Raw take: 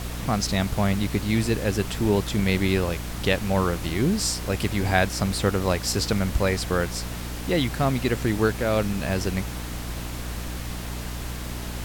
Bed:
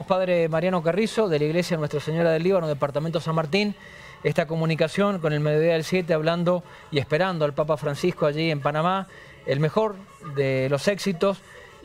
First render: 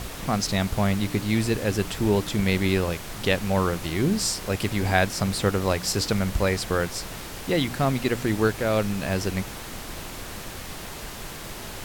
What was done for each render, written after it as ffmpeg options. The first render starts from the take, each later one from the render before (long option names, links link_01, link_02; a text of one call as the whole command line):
ffmpeg -i in.wav -af "bandreject=frequency=60:width_type=h:width=4,bandreject=frequency=120:width_type=h:width=4,bandreject=frequency=180:width_type=h:width=4,bandreject=frequency=240:width_type=h:width=4,bandreject=frequency=300:width_type=h:width=4" out.wav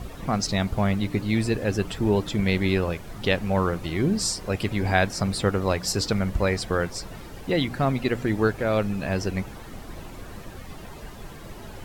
ffmpeg -i in.wav -af "afftdn=noise_reduction=12:noise_floor=-37" out.wav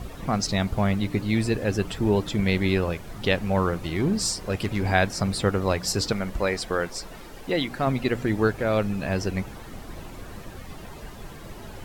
ffmpeg -i in.wav -filter_complex "[0:a]asettb=1/sr,asplit=3[link_01][link_02][link_03];[link_01]atrim=end=3.854[link_04];[link_02]atrim=start=3.85:end=4.86,asetpts=PTS-STARTPTS,afade=type=in:duration=0.004:curve=qsin,afade=type=out:start_time=1.006:duration=0.004:curve=qsin,asoftclip=type=hard:threshold=-18dB[link_05];[link_03]atrim=start=4.856[link_06];[link_04][link_05]acrossfade=duration=0.004:curve1=hsin:curve2=qsin[link_07];[link_07][link_06]acrossfade=duration=0.004:curve1=qsin:curve2=hsin,asettb=1/sr,asplit=3[link_08][link_09][link_10];[link_08]atrim=end=6.124[link_11];[link_09]atrim=start=6.12:end=7.87,asetpts=PTS-STARTPTS,afade=type=in:duration=0.004:curve=qsin,afade=type=out:start_time=1.746:duration=0.004:curve=qsin,equalizer=frequency=96:width_type=o:width=1.8:gain=-9.5[link_12];[link_10]atrim=start=7.866[link_13];[link_11][link_12]acrossfade=duration=0.004:curve1=hsin:curve2=qsin[link_14];[link_14][link_13]acrossfade=duration=0.004:curve1=qsin:curve2=hsin" out.wav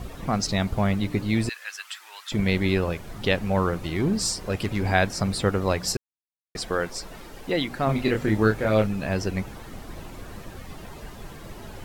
ffmpeg -i in.wav -filter_complex "[0:a]asettb=1/sr,asplit=3[link_01][link_02][link_03];[link_01]atrim=end=1.494[link_04];[link_02]atrim=start=1.49:end=2.32,asetpts=PTS-STARTPTS,afade=type=in:duration=0.004:curve=qsin,afade=type=out:start_time=0.826:duration=0.004:curve=qsin,highpass=frequency=1300:width=0.5412,highpass=frequency=1300:width=1.3066[link_05];[link_03]atrim=start=2.316[link_06];[link_04][link_05]acrossfade=duration=0.004:curve1=hsin:curve2=qsin[link_07];[link_07][link_06]acrossfade=duration=0.004:curve1=qsin:curve2=hsin,asettb=1/sr,asplit=3[link_08][link_09][link_10];[link_08]atrim=end=7.864[link_11];[link_09]atrim=start=7.86:end=8.87,asetpts=PTS-STARTPTS,afade=type=in:duration=0.004:curve=qsin,afade=type=out:start_time=1.006:duration=0.004:curve=qsin,asplit=2[link_12][link_13];[link_13]adelay=28,volume=-4dB[link_14];[link_12][link_14]amix=inputs=2:normalize=0,atrim=end_sample=44541[link_15];[link_10]atrim=start=8.866[link_16];[link_11][link_15]acrossfade=duration=0.004:curve1=hsin:curve2=qsin[link_17];[link_17][link_16]acrossfade=duration=0.004:curve1=qsin:curve2=hsin,asplit=3[link_18][link_19][link_20];[link_18]atrim=end=5.97,asetpts=PTS-STARTPTS,afade=type=out:start_time=5.966:duration=0.004:curve=hsin[link_21];[link_19]atrim=start=5.97:end=6.55,asetpts=PTS-STARTPTS,volume=0[link_22];[link_20]atrim=start=6.55,asetpts=PTS-STARTPTS,afade=type=in:duration=0.004:curve=hsin[link_23];[link_21][link_22][link_23]concat=n=3:v=0:a=1" out.wav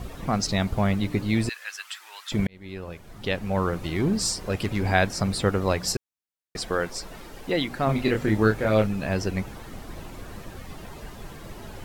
ffmpeg -i in.wav -filter_complex "[0:a]asplit=2[link_01][link_02];[link_01]atrim=end=2.47,asetpts=PTS-STARTPTS,afade=type=out:start_time=2.466:duration=0.004:curve=hsin[link_03];[link_02]atrim=start=2.47,asetpts=PTS-STARTPTS,afade=type=in:duration=1.39[link_04];[link_03][link_04]concat=n=2:v=0:a=1" out.wav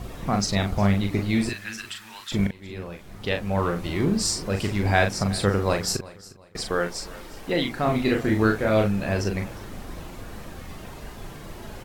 ffmpeg -i in.wav -filter_complex "[0:a]asplit=2[link_01][link_02];[link_02]adelay=40,volume=-5.5dB[link_03];[link_01][link_03]amix=inputs=2:normalize=0,aecho=1:1:358|716|1074:0.106|0.0328|0.0102" out.wav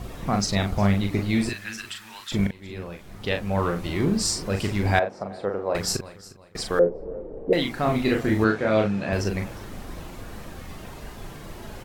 ffmpeg -i in.wav -filter_complex "[0:a]asettb=1/sr,asplit=3[link_01][link_02][link_03];[link_01]atrim=end=4.994[link_04];[link_02]atrim=start=4.99:end=5.75,asetpts=PTS-STARTPTS,afade=type=in:duration=0.004:curve=qsin,afade=type=out:start_time=0.756:duration=0.004:curve=qsin,bandpass=frequency=600:width_type=q:width=1.4[link_05];[link_03]atrim=start=5.746[link_06];[link_04][link_05]acrossfade=duration=0.004:curve1=hsin:curve2=qsin[link_07];[link_07][link_06]acrossfade=duration=0.004:curve1=qsin:curve2=hsin,asettb=1/sr,asplit=3[link_08][link_09][link_10];[link_08]atrim=end=6.794[link_11];[link_09]atrim=start=6.79:end=7.53,asetpts=PTS-STARTPTS,afade=type=in:duration=0.004:curve=qsin,afade=type=out:start_time=0.736:duration=0.004:curve=qsin,lowpass=frequency=480:width_type=q:width=4.8[link_12];[link_10]atrim=start=7.526[link_13];[link_11][link_12]acrossfade=duration=0.004:curve1=hsin:curve2=qsin[link_14];[link_14][link_13]acrossfade=duration=0.004:curve1=qsin:curve2=hsin,asettb=1/sr,asplit=3[link_15][link_16][link_17];[link_15]atrim=end=8.444[link_18];[link_16]atrim=start=8.44:end=9.13,asetpts=PTS-STARTPTS,afade=type=in:duration=0.004:curve=qsin,afade=type=out:start_time=0.686:duration=0.004:curve=qsin,highpass=120,lowpass=5800[link_19];[link_17]atrim=start=9.126[link_20];[link_18][link_19]acrossfade=duration=0.004:curve1=hsin:curve2=qsin[link_21];[link_21][link_20]acrossfade=duration=0.004:curve1=qsin:curve2=hsin" out.wav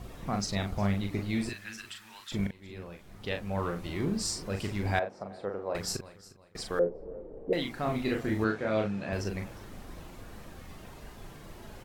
ffmpeg -i in.wav -af "volume=-8dB" out.wav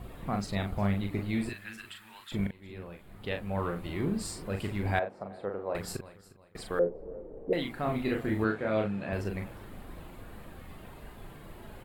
ffmpeg -i in.wav -af "equalizer=frequency=5800:width_type=o:width=0.6:gain=-14.5" out.wav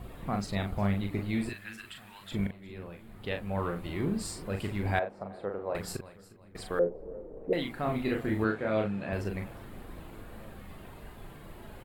ffmpeg -i in.wav -filter_complex "[0:a]asplit=2[link_01][link_02];[link_02]adelay=1691,volume=-24dB,highshelf=frequency=4000:gain=-38[link_03];[link_01][link_03]amix=inputs=2:normalize=0" out.wav